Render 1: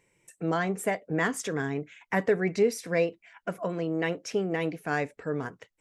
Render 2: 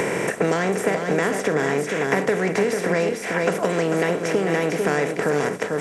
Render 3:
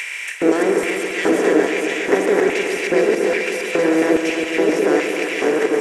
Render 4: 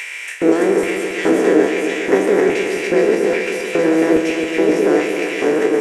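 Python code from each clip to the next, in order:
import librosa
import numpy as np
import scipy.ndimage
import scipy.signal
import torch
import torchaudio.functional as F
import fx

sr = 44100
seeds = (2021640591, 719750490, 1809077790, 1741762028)

y1 = fx.bin_compress(x, sr, power=0.4)
y1 = y1 + 10.0 ** (-7.5 / 20.0) * np.pad(y1, (int(445 * sr / 1000.0), 0))[:len(y1)]
y1 = fx.band_squash(y1, sr, depth_pct=100)
y2 = fx.reverse_delay(y1, sr, ms=452, wet_db=-1)
y2 = fx.filter_lfo_highpass(y2, sr, shape='square', hz=1.2, low_hz=320.0, high_hz=2500.0, q=3.2)
y2 = fx.echo_heads(y2, sr, ms=137, heads='first and second', feedback_pct=67, wet_db=-11.0)
y2 = F.gain(torch.from_numpy(y2), -2.0).numpy()
y3 = fx.spec_trails(y2, sr, decay_s=0.38)
y3 = fx.low_shelf(y3, sr, hz=470.0, db=6.0)
y3 = F.gain(torch.from_numpy(y3), -2.5).numpy()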